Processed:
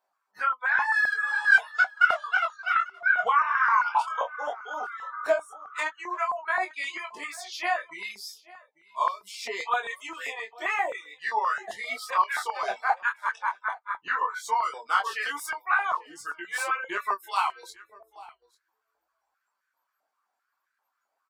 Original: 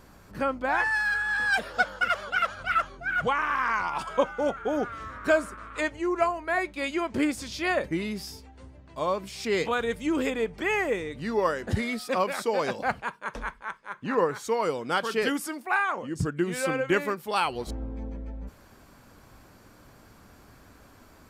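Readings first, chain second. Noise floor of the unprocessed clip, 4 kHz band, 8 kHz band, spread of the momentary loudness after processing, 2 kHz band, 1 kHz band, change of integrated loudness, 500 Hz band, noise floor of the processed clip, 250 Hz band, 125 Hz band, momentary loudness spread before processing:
-54 dBFS, -2.0 dB, -1.5 dB, 13 LU, +3.0 dB, +3.0 dB, +1.0 dB, -8.0 dB, -81 dBFS, -21.0 dB, under -30 dB, 11 LU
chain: tracing distortion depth 0.023 ms; reverb removal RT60 0.69 s; compression 8:1, threshold -26 dBFS, peak gain reduction 9.5 dB; chorus 0.12 Hz, delay 20 ms, depth 3.9 ms; spectral noise reduction 27 dB; flange 0.82 Hz, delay 4.4 ms, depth 7.1 ms, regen -37%; on a send: delay 844 ms -22.5 dB; on the sum: step-sequenced high-pass 7.6 Hz 720–1600 Hz; trim +7.5 dB

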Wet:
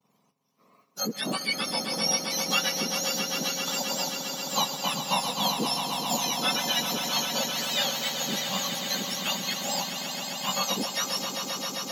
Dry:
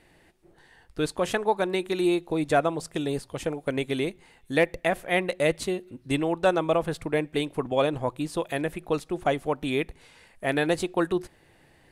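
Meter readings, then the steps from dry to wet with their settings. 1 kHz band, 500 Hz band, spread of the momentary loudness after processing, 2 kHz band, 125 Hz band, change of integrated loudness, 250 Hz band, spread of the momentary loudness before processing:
0.0 dB, -10.0 dB, 5 LU, -1.0 dB, -6.5 dB, 0.0 dB, -6.5 dB, 7 LU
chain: spectrum inverted on a logarithmic axis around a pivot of 1.4 kHz; expander -53 dBFS; echo with a slow build-up 132 ms, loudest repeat 5, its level -9.5 dB

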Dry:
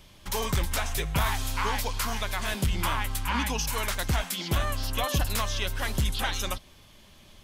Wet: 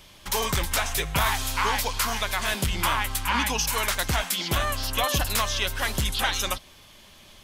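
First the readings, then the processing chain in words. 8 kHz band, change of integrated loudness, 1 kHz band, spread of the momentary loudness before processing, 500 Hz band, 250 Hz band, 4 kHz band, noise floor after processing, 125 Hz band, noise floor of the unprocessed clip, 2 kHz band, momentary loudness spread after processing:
+5.5 dB, +4.0 dB, +4.5 dB, 3 LU, +3.0 dB, +0.5 dB, +5.5 dB, -51 dBFS, -1.0 dB, -54 dBFS, +5.0 dB, 2 LU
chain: bass shelf 390 Hz -7 dB; trim +5.5 dB

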